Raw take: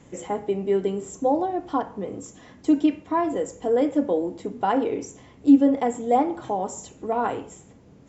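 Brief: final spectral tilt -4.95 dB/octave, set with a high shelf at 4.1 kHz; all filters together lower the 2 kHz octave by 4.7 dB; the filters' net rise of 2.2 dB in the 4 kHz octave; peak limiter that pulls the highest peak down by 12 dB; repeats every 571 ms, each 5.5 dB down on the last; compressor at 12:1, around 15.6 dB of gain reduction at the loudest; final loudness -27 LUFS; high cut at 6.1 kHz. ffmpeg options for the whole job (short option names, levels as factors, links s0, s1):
-af "lowpass=6100,equalizer=f=2000:t=o:g=-8.5,equalizer=f=4000:t=o:g=5,highshelf=f=4100:g=5,acompressor=threshold=0.0562:ratio=12,alimiter=level_in=1.58:limit=0.0631:level=0:latency=1,volume=0.631,aecho=1:1:571|1142|1713|2284|2855|3426|3997:0.531|0.281|0.149|0.079|0.0419|0.0222|0.0118,volume=2.82"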